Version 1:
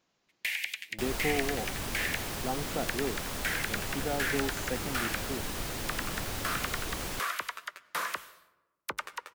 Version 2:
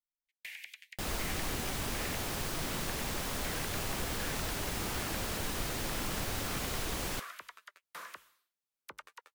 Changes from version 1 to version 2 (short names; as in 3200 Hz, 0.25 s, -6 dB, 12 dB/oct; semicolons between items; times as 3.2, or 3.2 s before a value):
speech: muted; first sound -11.5 dB; reverb: off